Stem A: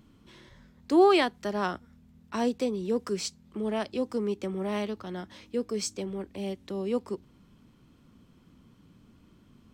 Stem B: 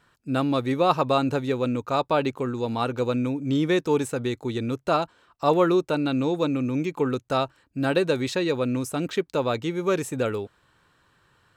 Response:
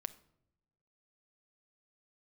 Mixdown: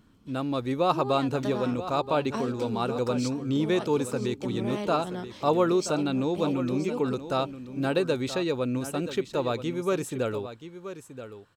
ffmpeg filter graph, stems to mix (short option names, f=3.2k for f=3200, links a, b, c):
-filter_complex "[0:a]acompressor=threshold=-31dB:ratio=6,volume=-2dB,asplit=2[a][b];[b]volume=-16dB[c];[1:a]volume=-7.5dB,asplit=3[d][e][f];[e]volume=-12dB[g];[f]apad=whole_len=429404[h];[a][h]sidechaincompress=threshold=-33dB:ratio=8:attack=6.3:release=105[i];[c][g]amix=inputs=2:normalize=0,aecho=0:1:978:1[j];[i][d][j]amix=inputs=3:normalize=0,equalizer=f=1.9k:t=o:w=0.65:g=-3.5,dynaudnorm=f=220:g=5:m=4.5dB"